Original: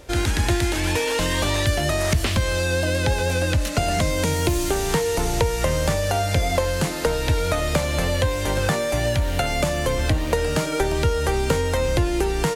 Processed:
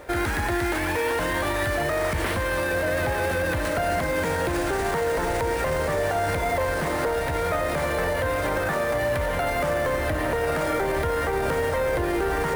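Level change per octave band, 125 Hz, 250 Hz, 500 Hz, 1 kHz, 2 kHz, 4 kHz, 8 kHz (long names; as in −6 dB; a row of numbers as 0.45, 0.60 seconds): −8.5, −3.5, −1.0, +1.0, +0.5, −9.0, −9.0 decibels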